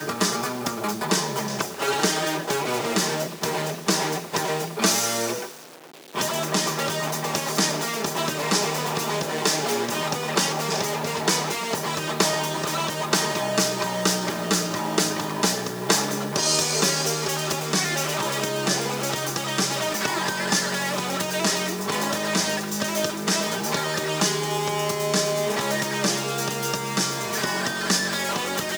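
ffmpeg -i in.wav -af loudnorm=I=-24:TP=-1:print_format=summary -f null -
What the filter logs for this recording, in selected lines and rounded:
Input Integrated:    -23.8 LUFS
Input True Peak:      -4.3 dBTP
Input LRA:             2.1 LU
Input Threshold:     -33.9 LUFS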